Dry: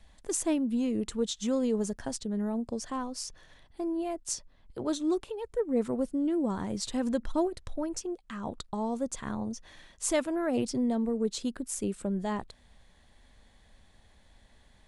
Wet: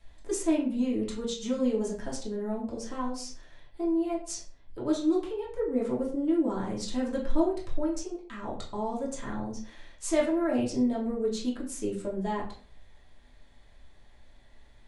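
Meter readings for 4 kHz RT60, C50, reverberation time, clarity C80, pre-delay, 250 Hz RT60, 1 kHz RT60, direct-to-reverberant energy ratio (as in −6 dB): 0.30 s, 6.5 dB, 0.45 s, 11.0 dB, 3 ms, 0.50 s, 0.45 s, −6.0 dB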